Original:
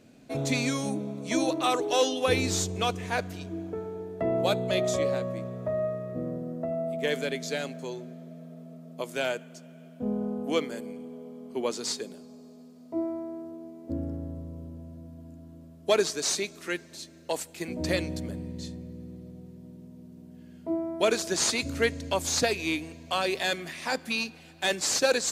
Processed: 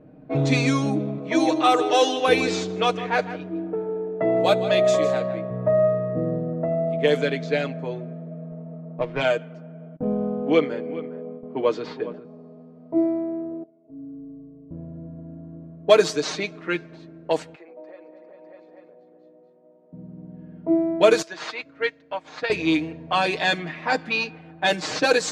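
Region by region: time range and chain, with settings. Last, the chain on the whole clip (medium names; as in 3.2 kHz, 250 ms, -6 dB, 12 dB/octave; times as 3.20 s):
1.18–5.51 s: high-pass 310 Hz 6 dB/octave + delay 157 ms -13 dB
8.51–9.21 s: peaking EQ 7.6 kHz -13.5 dB 0.47 oct + sliding maximum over 5 samples
9.96–12.25 s: gate with hold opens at -35 dBFS, closes at -41 dBFS + low-pass 3.6 kHz + delay 409 ms -15 dB
13.63–14.71 s: compression, threshold -36 dBFS + inharmonic resonator 130 Hz, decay 0.48 s, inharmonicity 0.03
17.55–19.93 s: multi-tap echo 219/400/602/842 ms -15.5/-13/-10/-16 dB + compression 8:1, threshold -36 dBFS + ladder high-pass 420 Hz, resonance 30%
21.22–22.50 s: high-pass 1.4 kHz 6 dB/octave + treble shelf 6.7 kHz -7 dB + upward expansion, over -49 dBFS
whole clip: low-pass 3.1 kHz 6 dB/octave; level-controlled noise filter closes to 1 kHz, open at -22.5 dBFS; comb 6.5 ms; trim +6.5 dB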